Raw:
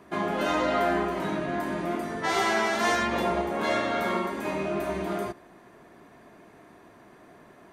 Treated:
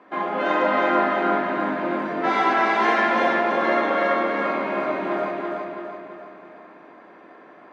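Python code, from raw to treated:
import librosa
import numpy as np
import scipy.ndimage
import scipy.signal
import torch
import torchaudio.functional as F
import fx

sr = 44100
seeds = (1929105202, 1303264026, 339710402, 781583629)

y = fx.bandpass_edges(x, sr, low_hz=370.0, high_hz=2400.0)
y = fx.echo_feedback(y, sr, ms=332, feedback_pct=46, wet_db=-3.5)
y = fx.room_shoebox(y, sr, seeds[0], volume_m3=3200.0, walls='mixed', distance_m=2.1)
y = y * 10.0 ** (3.0 / 20.0)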